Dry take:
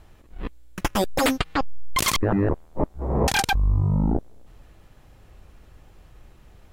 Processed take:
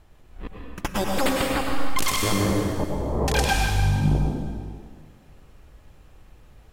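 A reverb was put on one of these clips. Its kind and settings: plate-style reverb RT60 1.8 s, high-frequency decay 1×, pre-delay 90 ms, DRR -1.5 dB; trim -4 dB

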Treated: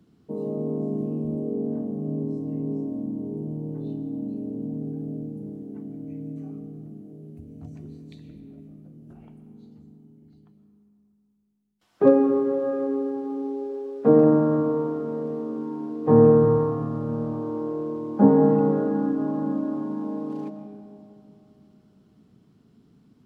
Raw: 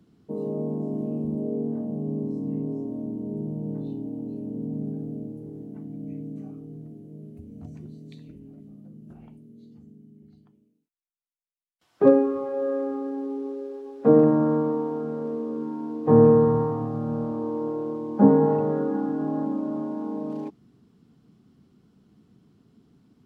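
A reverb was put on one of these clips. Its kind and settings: algorithmic reverb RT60 3 s, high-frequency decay 0.35×, pre-delay 85 ms, DRR 8 dB

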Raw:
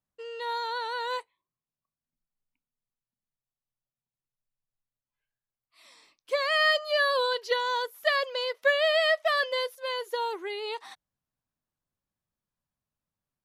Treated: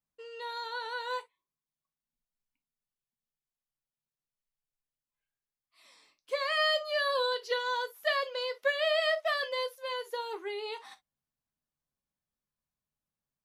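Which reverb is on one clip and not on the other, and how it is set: gated-style reverb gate 80 ms falling, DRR 6.5 dB; trim -5 dB

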